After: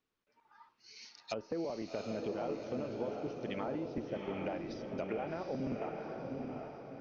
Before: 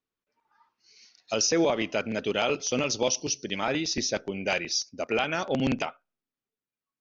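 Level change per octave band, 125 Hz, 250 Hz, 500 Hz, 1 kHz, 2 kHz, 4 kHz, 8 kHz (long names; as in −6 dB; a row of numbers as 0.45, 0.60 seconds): −8.0 dB, −8.5 dB, −9.0 dB, −10.5 dB, −18.0 dB, −22.5 dB, can't be measured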